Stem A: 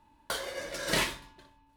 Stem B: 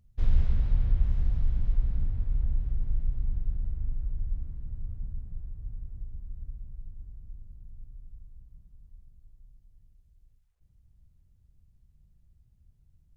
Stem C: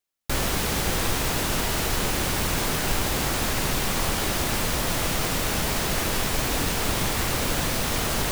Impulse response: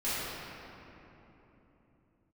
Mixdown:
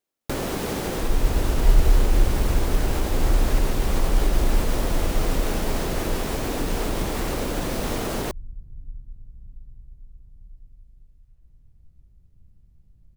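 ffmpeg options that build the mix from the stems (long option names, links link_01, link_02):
-filter_complex "[1:a]acontrast=89,adelay=800,volume=-10.5dB,asplit=2[link_01][link_02];[link_02]volume=-3.5dB[link_03];[2:a]volume=-2dB[link_04];[link_01][link_04]amix=inputs=2:normalize=0,equalizer=frequency=360:width=0.48:gain=11,acompressor=threshold=-24dB:ratio=6,volume=0dB[link_05];[3:a]atrim=start_sample=2205[link_06];[link_03][link_06]afir=irnorm=-1:irlink=0[link_07];[link_05][link_07]amix=inputs=2:normalize=0"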